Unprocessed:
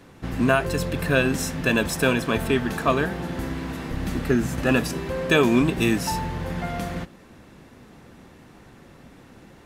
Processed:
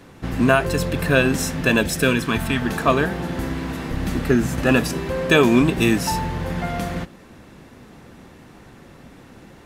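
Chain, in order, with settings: 1.81–2.6 bell 1200 Hz -> 360 Hz -14 dB 0.52 oct; gain +3.5 dB

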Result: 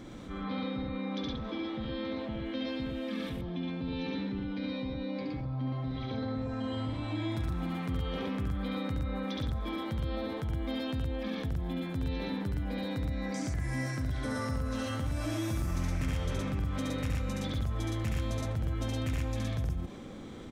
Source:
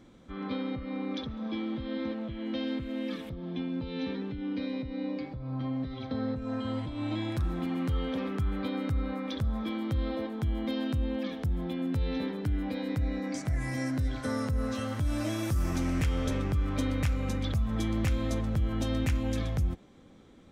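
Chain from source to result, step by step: loudspeakers at several distances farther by 24 m -2 dB, 40 m -1 dB; fast leveller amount 50%; gain -8.5 dB

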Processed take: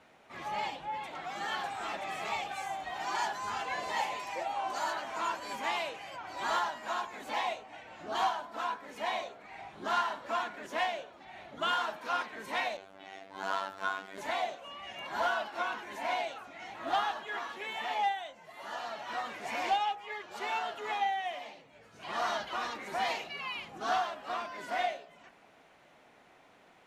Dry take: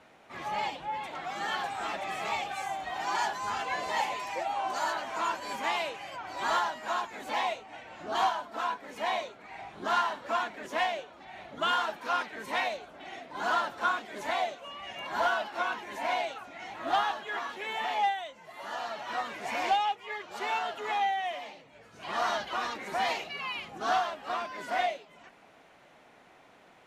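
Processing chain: de-hum 62.91 Hz, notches 29; 12.77–14.18 robotiser 96.7 Hz; gain -2.5 dB

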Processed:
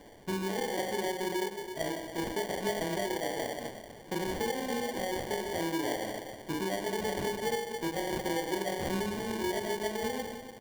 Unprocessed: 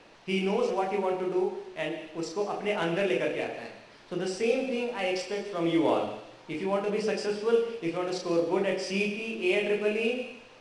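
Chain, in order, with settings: band shelf 1900 Hz -15 dB 1.3 oct; compressor, threshold -33 dBFS, peak gain reduction 14 dB; high shelf 5300 Hz +9.5 dB; echo 0.291 s -12 dB; sample-rate reducer 1300 Hz, jitter 0%; gain +2.5 dB

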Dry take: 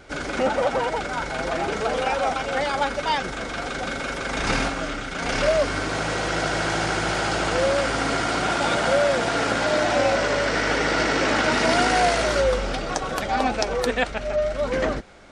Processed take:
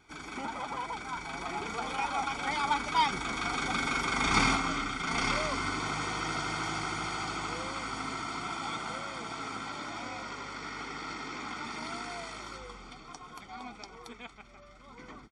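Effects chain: Doppler pass-by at 4.04, 14 m/s, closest 16 m; low shelf 120 Hz -10 dB; comb 0.9 ms, depth 81%; gain -3 dB

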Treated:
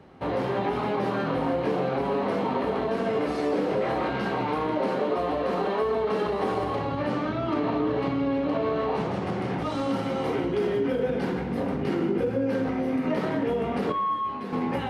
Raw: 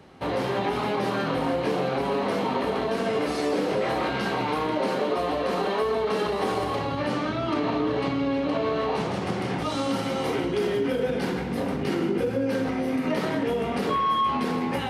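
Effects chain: high shelf 3100 Hz -11.5 dB; 9.27–9.82 hard clip -21.5 dBFS, distortion -35 dB; 13.92–14.53 resonator 100 Hz, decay 0.17 s, harmonics all, mix 90%

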